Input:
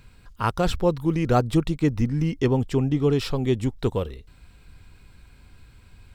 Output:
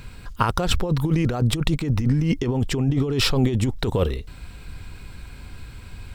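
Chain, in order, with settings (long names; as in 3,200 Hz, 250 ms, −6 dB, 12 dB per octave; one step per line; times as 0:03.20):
compressor whose output falls as the input rises −27 dBFS, ratio −1
level +6.5 dB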